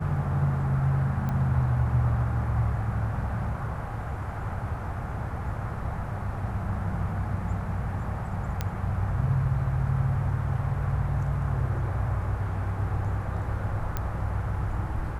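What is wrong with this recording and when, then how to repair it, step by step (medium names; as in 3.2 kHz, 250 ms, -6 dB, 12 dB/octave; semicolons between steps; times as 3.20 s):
1.29 s: pop -20 dBFS
8.61 s: pop -14 dBFS
13.97 s: pop -15 dBFS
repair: de-click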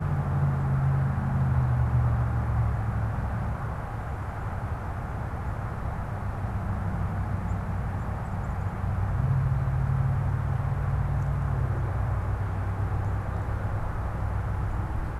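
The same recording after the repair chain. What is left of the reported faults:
nothing left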